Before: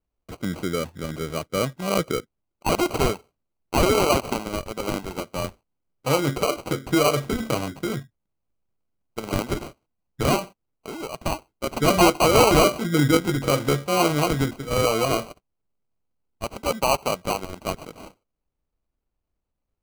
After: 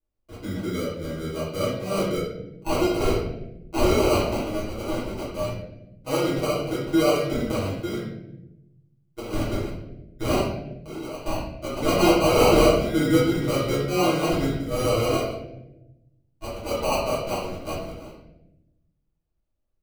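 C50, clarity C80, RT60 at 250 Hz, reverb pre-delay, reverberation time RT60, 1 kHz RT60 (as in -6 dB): 1.0 dB, 5.0 dB, 1.5 s, 3 ms, 0.90 s, 0.75 s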